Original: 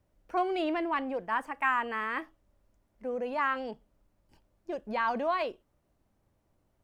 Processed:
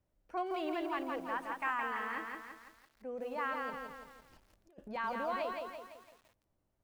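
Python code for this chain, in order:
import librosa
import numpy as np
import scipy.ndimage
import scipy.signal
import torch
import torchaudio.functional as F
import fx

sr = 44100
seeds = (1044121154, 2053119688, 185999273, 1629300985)

y = fx.over_compress(x, sr, threshold_db=-44.0, ratio=-0.5, at=(3.7, 4.89))
y = fx.echo_crushed(y, sr, ms=168, feedback_pct=55, bits=9, wet_db=-3.5)
y = F.gain(torch.from_numpy(y), -8.0).numpy()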